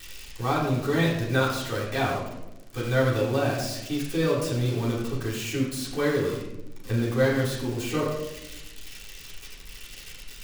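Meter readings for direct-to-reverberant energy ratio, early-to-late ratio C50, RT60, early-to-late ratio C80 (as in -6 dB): -11.0 dB, 3.5 dB, 0.95 s, 5.5 dB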